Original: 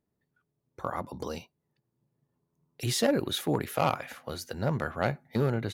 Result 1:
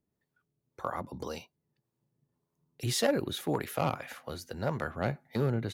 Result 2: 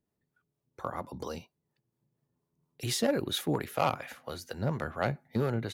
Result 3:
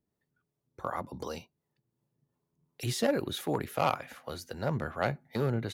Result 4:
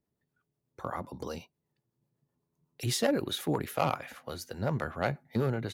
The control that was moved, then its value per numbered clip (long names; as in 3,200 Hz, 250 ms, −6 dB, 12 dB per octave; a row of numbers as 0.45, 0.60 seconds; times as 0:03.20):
two-band tremolo in antiphase, speed: 1.8, 4.3, 2.7, 8 Hertz